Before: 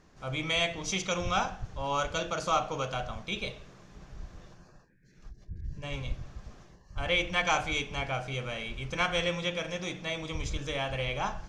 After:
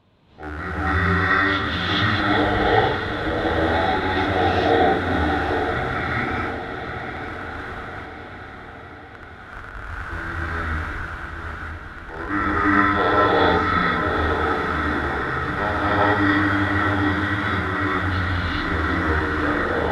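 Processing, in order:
loose part that buzzes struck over −43 dBFS, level −26 dBFS
high-pass filter 96 Hz
on a send: feedback delay with all-pass diffusion 504 ms, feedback 57%, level −8 dB
on the sum: wrong playback speed 78 rpm record played at 45 rpm
reverb whose tail is shaped and stops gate 470 ms rising, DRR −8 dB
level +2 dB

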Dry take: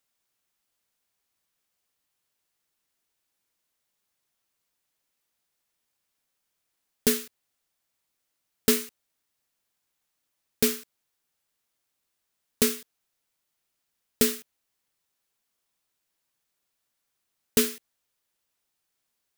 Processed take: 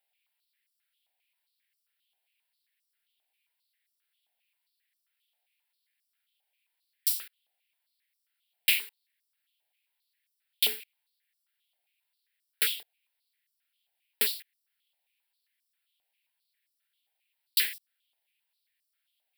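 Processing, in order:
phaser with its sweep stopped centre 2,800 Hz, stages 4
high-pass on a step sequencer 7.5 Hz 760–5,800 Hz

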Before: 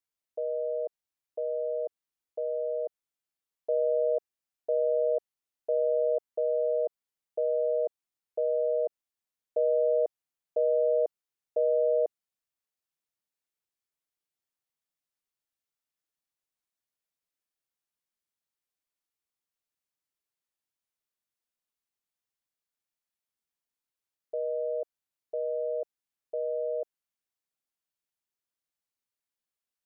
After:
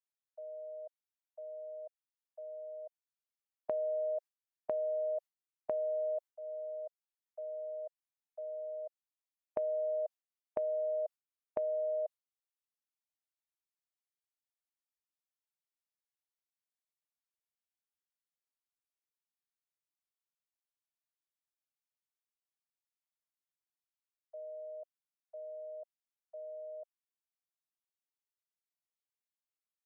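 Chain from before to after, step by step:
Butterworth high-pass 570 Hz 72 dB per octave
noise gate with hold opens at −26 dBFS
downward compressor 5 to 1, threshold −46 dBFS, peak gain reduction 16 dB
level +10.5 dB

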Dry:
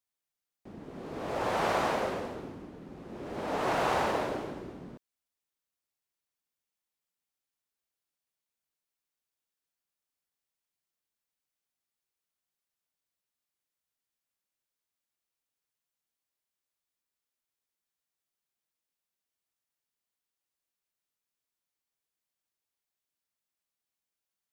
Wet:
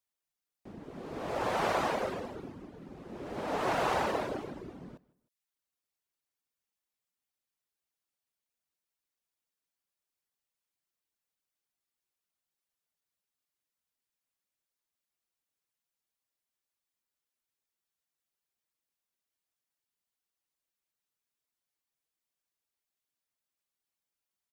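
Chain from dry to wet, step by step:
reverb reduction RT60 0.56 s
repeating echo 155 ms, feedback 34%, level −22.5 dB

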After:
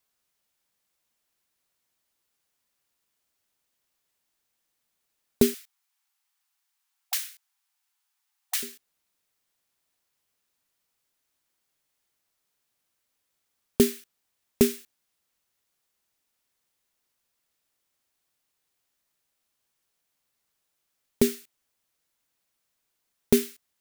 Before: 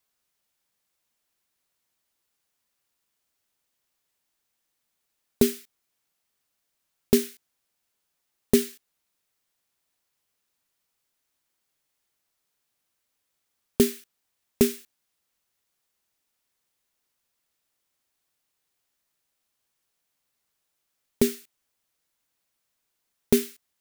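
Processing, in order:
0:05.54–0:08.63: linear-phase brick-wall high-pass 730 Hz

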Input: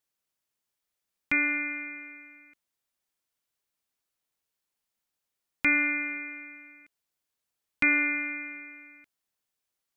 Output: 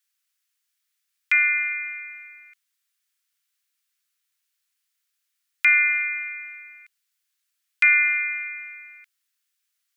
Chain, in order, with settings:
high-pass filter 1,400 Hz 24 dB per octave
level +7.5 dB

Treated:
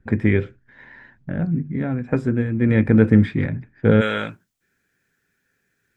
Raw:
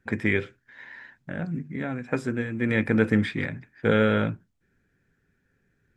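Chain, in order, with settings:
spectral tilt −3 dB per octave, from 0:04.00 +3 dB per octave
level +1.5 dB

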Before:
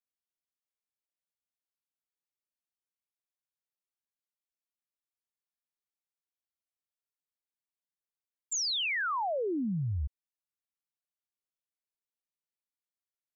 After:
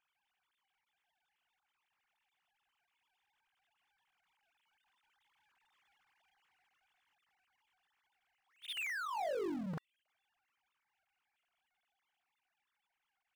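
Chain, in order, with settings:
three sine waves on the formant tracks
source passing by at 0:05.91, 5 m/s, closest 3.1 metres
power curve on the samples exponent 0.5
level +1.5 dB

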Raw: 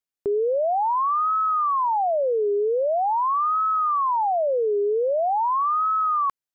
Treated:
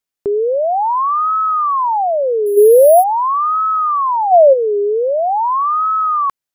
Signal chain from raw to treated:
0:02.57–0:04.53: gain on a spectral selection 370–740 Hz +9 dB
0:02.46–0:03.04: bad sample-rate conversion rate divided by 4×, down none, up hold
level +6.5 dB

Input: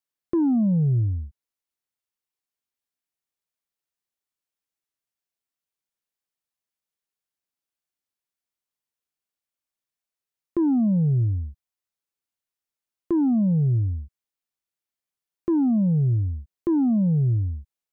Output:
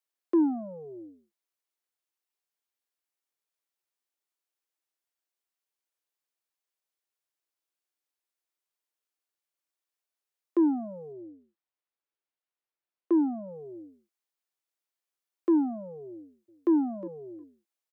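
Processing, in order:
Chebyshev high-pass filter 310 Hz, order 4
0:11.12–0:13.48: high-frequency loss of the air 230 metres
0:16.12–0:16.71: delay throw 360 ms, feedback 15%, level −15.5 dB

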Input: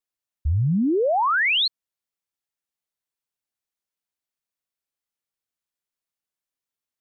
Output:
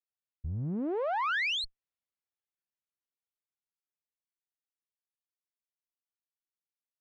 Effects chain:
one-sided soft clipper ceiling −30 dBFS
source passing by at 0:01.67, 10 m/s, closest 7.9 metres
low-pass filter 3,500 Hz 12 dB per octave
level −5 dB

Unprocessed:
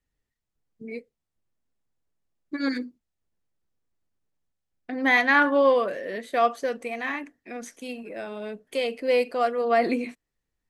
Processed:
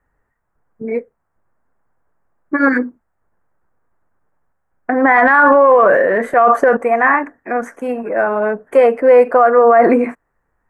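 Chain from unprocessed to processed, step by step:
drawn EQ curve 290 Hz 0 dB, 960 Hz +11 dB, 1,600 Hz +9 dB, 3,800 Hz −27 dB, 7,700 Hz −12 dB
0:05.16–0:06.77: transient designer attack −7 dB, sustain +7 dB
boost into a limiter +14 dB
level −1 dB

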